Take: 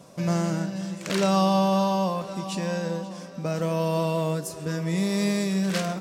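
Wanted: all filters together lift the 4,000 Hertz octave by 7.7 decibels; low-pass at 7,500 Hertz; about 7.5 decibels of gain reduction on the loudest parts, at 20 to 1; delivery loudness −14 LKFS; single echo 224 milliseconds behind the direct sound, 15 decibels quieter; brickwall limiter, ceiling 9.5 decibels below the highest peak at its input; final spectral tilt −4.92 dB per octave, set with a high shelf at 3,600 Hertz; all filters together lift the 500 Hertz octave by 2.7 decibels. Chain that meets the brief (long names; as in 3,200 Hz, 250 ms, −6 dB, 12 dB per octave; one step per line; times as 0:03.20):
low-pass filter 7,500 Hz
parametric band 500 Hz +3 dB
high-shelf EQ 3,600 Hz +6 dB
parametric band 4,000 Hz +6 dB
downward compressor 20 to 1, threshold −23 dBFS
brickwall limiter −21 dBFS
single-tap delay 224 ms −15 dB
level +16.5 dB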